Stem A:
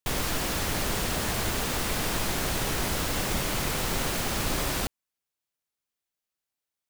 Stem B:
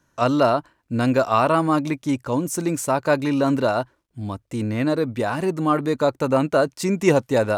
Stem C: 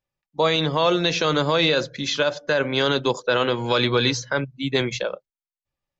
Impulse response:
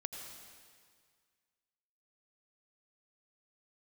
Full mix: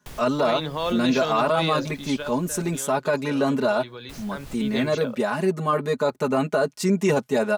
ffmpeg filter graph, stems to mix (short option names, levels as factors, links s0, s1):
-filter_complex "[0:a]acrossover=split=160[s0][s1];[s1]acompressor=threshold=0.02:ratio=4[s2];[s0][s2]amix=inputs=2:normalize=0,volume=0.398,asplit=3[s3][s4][s5];[s3]atrim=end=2.78,asetpts=PTS-STARTPTS,afade=t=out:st=2.776:d=0.004:c=hsin[s6];[s4]atrim=start=2.78:end=4.09,asetpts=PTS-STARTPTS,volume=0[s7];[s5]atrim=start=4.09,asetpts=PTS-STARTPTS,afade=t=in:d=0.004:c=hsin[s8];[s6][s7][s8]concat=n=3:v=0:a=1[s9];[1:a]highpass=95,aecho=1:1:4.8:1,volume=0.668,asplit=2[s10][s11];[2:a]acrusher=bits=7:mix=0:aa=0.5,volume=1.68,afade=t=out:st=1.82:d=0.64:silence=0.237137,afade=t=in:st=4.17:d=0.5:silence=0.266073[s12];[s11]apad=whole_len=304098[s13];[s9][s13]sidechaincompress=threshold=0.0224:ratio=8:attack=5.2:release=268[s14];[s14][s10][s12]amix=inputs=3:normalize=0,alimiter=limit=0.251:level=0:latency=1:release=10"